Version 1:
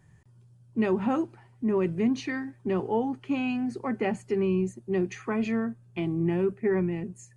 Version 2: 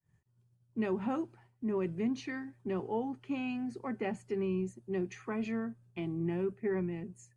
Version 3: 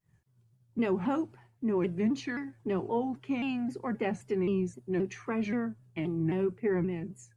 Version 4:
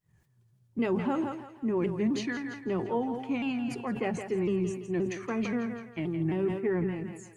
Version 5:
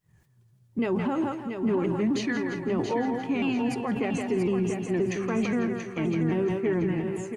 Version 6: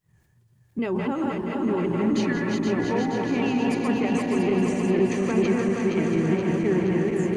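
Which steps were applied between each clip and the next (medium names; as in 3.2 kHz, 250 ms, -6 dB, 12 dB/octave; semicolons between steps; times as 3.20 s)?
expander -50 dBFS; trim -7.5 dB
vibrato with a chosen wave saw down 3.8 Hz, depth 160 cents; trim +4 dB
on a send: thinning echo 167 ms, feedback 46%, high-pass 350 Hz, level -8.5 dB; on the sum: decay stretcher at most 74 dB/s
peak limiter -23.5 dBFS, peak gain reduction 5.5 dB; feedback delay 682 ms, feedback 31%, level -7 dB; trim +4.5 dB
backward echo that repeats 237 ms, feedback 83%, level -4 dB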